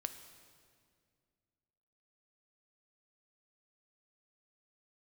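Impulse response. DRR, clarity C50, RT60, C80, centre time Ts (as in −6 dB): 8.5 dB, 10.0 dB, 2.1 s, 11.0 dB, 19 ms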